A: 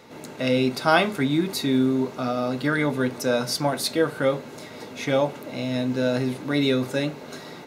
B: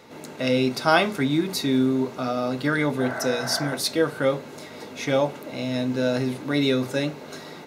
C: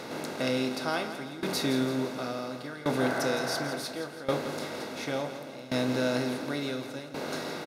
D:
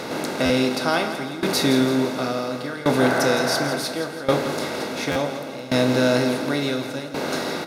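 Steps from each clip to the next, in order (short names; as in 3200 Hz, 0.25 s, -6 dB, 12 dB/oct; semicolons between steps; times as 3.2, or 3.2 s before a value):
notches 60/120/180/240 Hz; spectral repair 3.02–3.7, 540–2100 Hz after; dynamic EQ 5600 Hz, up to +4 dB, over -49 dBFS, Q 3.9
per-bin compression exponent 0.6; tremolo saw down 0.7 Hz, depth 90%; feedback echo 0.167 s, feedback 51%, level -11 dB; gain -6.5 dB
reverb RT60 1.0 s, pre-delay 21 ms, DRR 12 dB; stuck buffer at 0.45/5.11, samples 512, times 3; gain +9 dB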